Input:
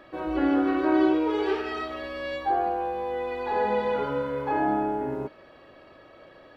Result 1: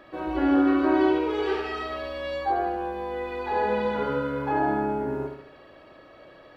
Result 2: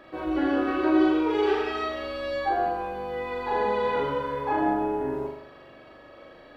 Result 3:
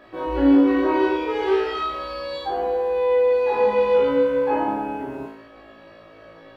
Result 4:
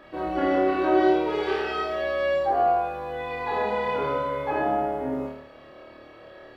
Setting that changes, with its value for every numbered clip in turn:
flutter between parallel walls, walls apart: 12.2, 7, 3.1, 4.6 metres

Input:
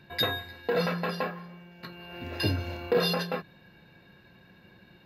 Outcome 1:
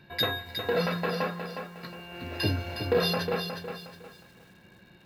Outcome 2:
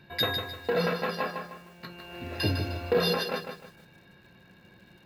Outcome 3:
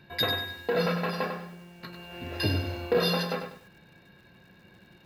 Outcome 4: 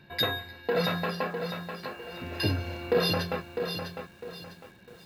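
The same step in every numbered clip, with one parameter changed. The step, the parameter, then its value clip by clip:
feedback echo at a low word length, delay time: 362, 153, 97, 653 milliseconds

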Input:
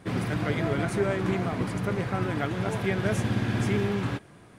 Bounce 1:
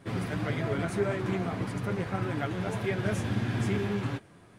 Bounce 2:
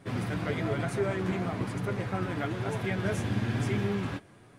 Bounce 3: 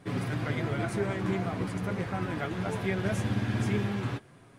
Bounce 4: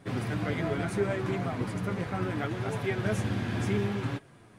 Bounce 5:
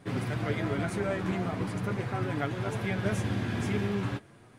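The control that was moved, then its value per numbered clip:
flanger, speed: 1.7, 1.1, 0.21, 0.72, 0.42 Hertz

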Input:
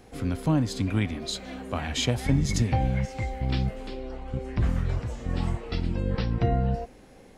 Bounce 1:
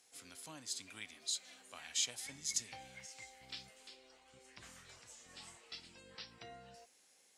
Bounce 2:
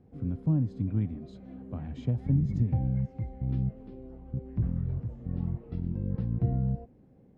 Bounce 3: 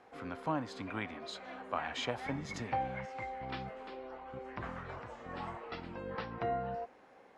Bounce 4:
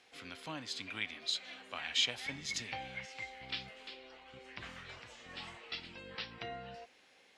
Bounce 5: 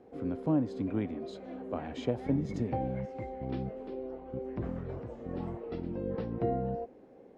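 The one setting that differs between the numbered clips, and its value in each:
resonant band-pass, frequency: 8,000, 140, 1,100, 3,100, 410 Hertz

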